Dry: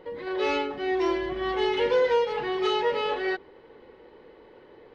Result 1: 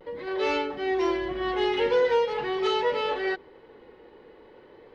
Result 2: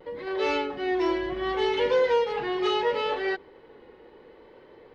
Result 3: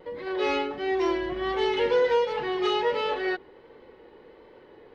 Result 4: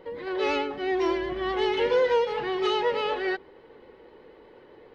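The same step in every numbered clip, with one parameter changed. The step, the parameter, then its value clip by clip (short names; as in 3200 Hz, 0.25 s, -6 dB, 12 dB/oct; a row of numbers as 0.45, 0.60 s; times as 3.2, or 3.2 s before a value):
vibrato, rate: 0.43, 0.7, 1.4, 8.1 Hz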